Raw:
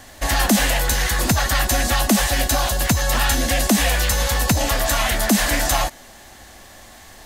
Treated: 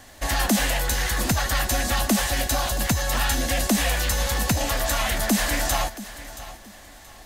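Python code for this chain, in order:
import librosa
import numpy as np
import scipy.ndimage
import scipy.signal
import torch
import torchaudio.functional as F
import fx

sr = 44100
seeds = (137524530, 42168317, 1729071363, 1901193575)

y = fx.echo_feedback(x, sr, ms=676, feedback_pct=29, wet_db=-15.5)
y = y * 10.0 ** (-4.5 / 20.0)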